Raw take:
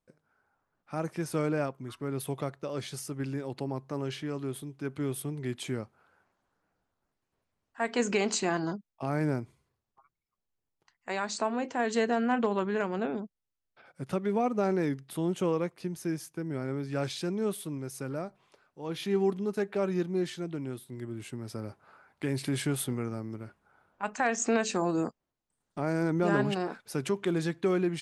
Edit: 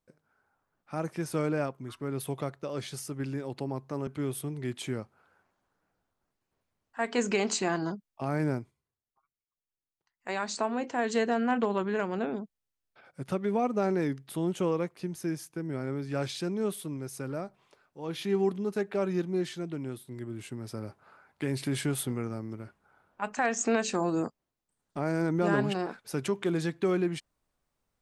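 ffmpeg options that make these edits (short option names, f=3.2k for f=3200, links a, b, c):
-filter_complex "[0:a]asplit=4[a][b][c][d];[a]atrim=end=4.072[e];[b]atrim=start=4.878:end=9.53,asetpts=PTS-STARTPTS,afade=t=out:st=4.502:d=0.15:silence=0.237137[f];[c]atrim=start=9.53:end=10.96,asetpts=PTS-STARTPTS,volume=-12.5dB[g];[d]atrim=start=10.96,asetpts=PTS-STARTPTS,afade=t=in:d=0.15:silence=0.237137[h];[f][g][h]concat=n=3:v=0:a=1[i];[e][i]acrossfade=d=0.004:c1=hsin:c2=hsin"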